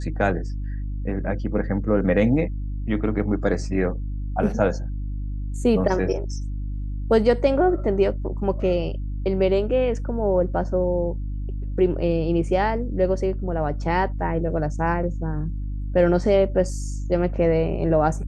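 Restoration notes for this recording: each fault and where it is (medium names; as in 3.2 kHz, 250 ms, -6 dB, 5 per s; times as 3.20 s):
hum 50 Hz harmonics 6 -28 dBFS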